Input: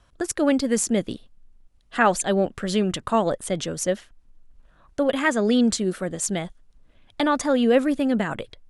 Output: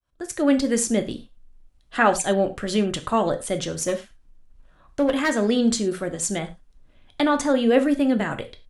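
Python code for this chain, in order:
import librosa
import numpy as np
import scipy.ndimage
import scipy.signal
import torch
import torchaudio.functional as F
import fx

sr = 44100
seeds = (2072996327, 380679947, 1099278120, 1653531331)

y = fx.fade_in_head(x, sr, length_s=0.54)
y = fx.clip_asym(y, sr, top_db=-19.0, bottom_db=-12.5, at=(3.69, 5.49), fade=0.02)
y = fx.rev_gated(y, sr, seeds[0], gate_ms=130, shape='falling', drr_db=7.0)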